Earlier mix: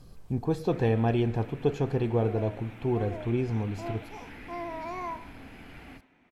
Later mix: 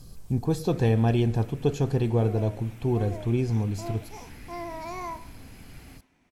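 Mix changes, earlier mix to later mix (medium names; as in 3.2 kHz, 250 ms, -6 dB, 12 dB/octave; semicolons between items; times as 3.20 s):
first sound -5.5 dB; master: add tone controls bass +5 dB, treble +12 dB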